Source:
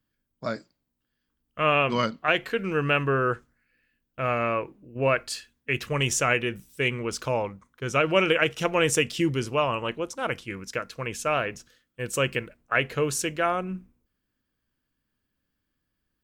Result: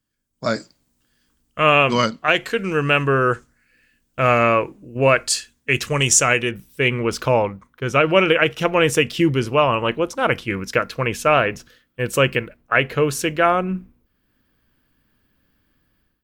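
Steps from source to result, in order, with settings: peaking EQ 7.4 kHz +8.5 dB 1.2 oct, from 6.51 s -7.5 dB; level rider gain up to 16 dB; trim -1 dB

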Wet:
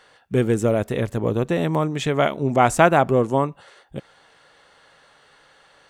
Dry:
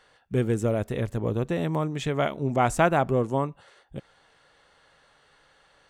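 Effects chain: bass shelf 88 Hz -9.5 dB; trim +6.5 dB

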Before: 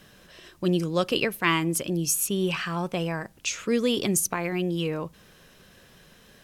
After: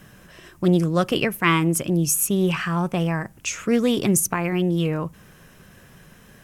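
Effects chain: graphic EQ 125/500/4000 Hz +4/-4/-10 dB; loudspeaker Doppler distortion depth 0.17 ms; trim +6 dB

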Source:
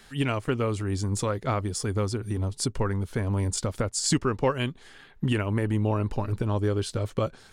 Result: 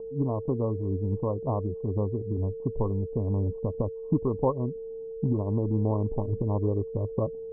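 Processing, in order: local Wiener filter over 41 samples; whistle 450 Hz -34 dBFS; Chebyshev low-pass 1.1 kHz, order 8

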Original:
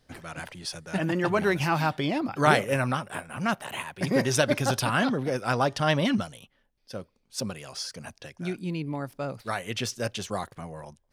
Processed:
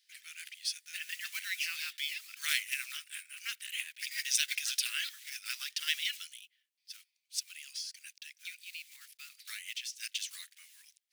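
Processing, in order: block-companded coder 5-bit; steep high-pass 2.1 kHz 36 dB/octave; 7.39–9.97 s: compression 4:1, threshold -38 dBFS, peak gain reduction 8 dB

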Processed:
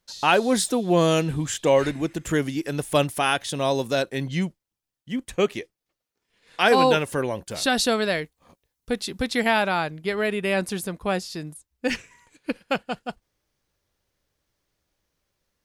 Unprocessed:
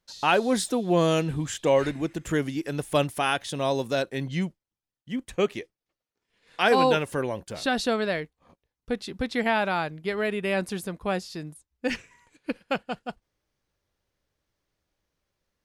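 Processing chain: treble shelf 4.9 kHz +4 dB, from 7.51 s +12 dB, from 9.62 s +5 dB; trim +2.5 dB

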